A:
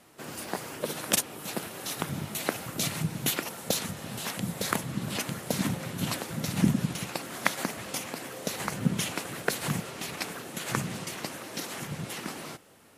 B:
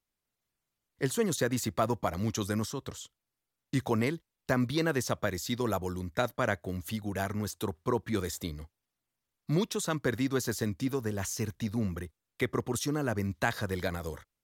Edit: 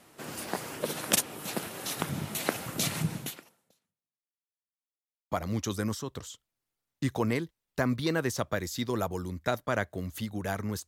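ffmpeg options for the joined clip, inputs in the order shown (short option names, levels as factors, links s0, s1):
-filter_complex "[0:a]apad=whole_dur=10.87,atrim=end=10.87,asplit=2[s0][s1];[s0]atrim=end=4.55,asetpts=PTS-STARTPTS,afade=t=out:st=3.14:d=1.41:c=exp[s2];[s1]atrim=start=4.55:end=5.31,asetpts=PTS-STARTPTS,volume=0[s3];[1:a]atrim=start=2.02:end=7.58,asetpts=PTS-STARTPTS,afade=t=in:d=0.004:c=hsin[s4];[s2][s3][s4]concat=n=3:v=0:a=1"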